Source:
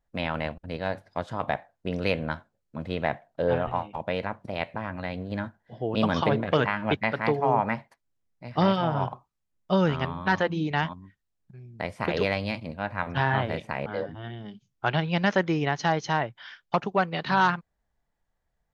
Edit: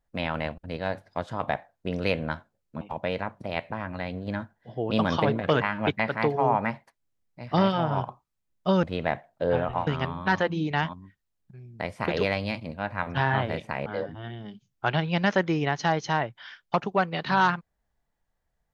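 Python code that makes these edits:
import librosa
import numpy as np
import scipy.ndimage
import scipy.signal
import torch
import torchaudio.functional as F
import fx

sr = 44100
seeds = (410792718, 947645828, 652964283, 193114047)

y = fx.edit(x, sr, fx.move(start_s=2.81, length_s=1.04, to_s=9.87), tone=tone)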